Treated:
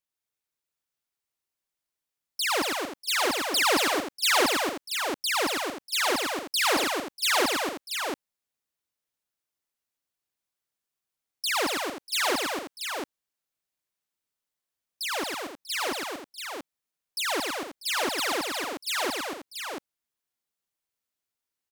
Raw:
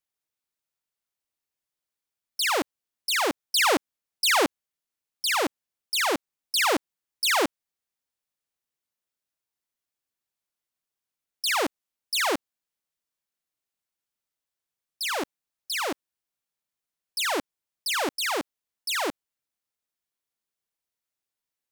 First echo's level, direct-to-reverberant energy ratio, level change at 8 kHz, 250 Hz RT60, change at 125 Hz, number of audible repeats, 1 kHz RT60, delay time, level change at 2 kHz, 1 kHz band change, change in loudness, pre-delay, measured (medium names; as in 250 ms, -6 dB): -5.5 dB, no reverb, +0.5 dB, no reverb, +0.5 dB, 6, no reverb, 107 ms, +0.5 dB, +0.5 dB, -1.0 dB, no reverb